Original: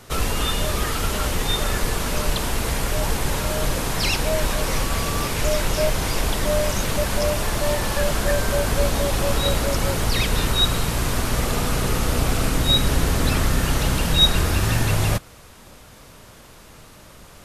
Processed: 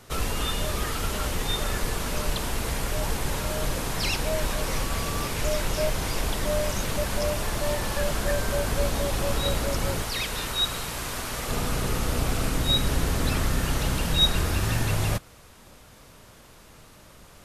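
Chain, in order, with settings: 10.02–11.49 low shelf 400 Hz -9.5 dB; gain -5 dB

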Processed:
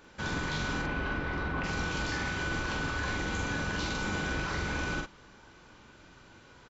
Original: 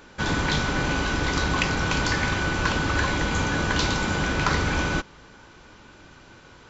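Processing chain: 0.81–1.63 LPF 2800 Hz -> 1900 Hz 12 dB/oct; limiter -18 dBFS, peak gain reduction 11 dB; doubler 45 ms -2.5 dB; gain -8 dB

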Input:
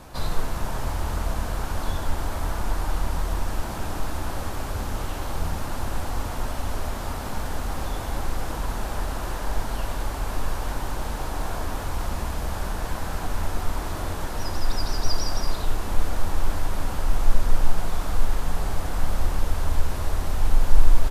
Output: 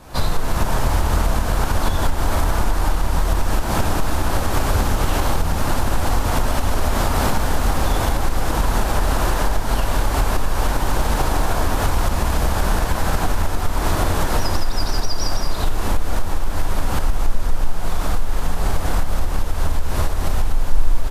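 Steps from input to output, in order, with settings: recorder AGC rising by 64 dB/s; gain -1 dB

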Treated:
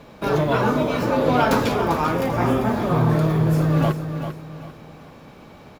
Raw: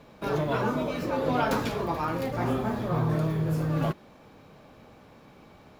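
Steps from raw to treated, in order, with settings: 1.74–2.69 notch 4200 Hz, Q 5.6; on a send: feedback echo 0.395 s, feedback 33%, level -9 dB; on the sum: gain +7.5 dB

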